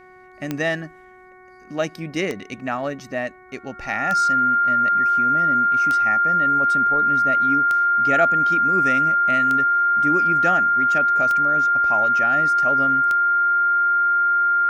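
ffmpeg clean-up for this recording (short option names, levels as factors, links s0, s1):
-af "adeclick=t=4,bandreject=f=369.1:t=h:w=4,bandreject=f=738.2:t=h:w=4,bandreject=f=1107.3:t=h:w=4,bandreject=f=1476.4:t=h:w=4,bandreject=f=1845.5:t=h:w=4,bandreject=f=2214.6:t=h:w=4,bandreject=f=1400:w=30"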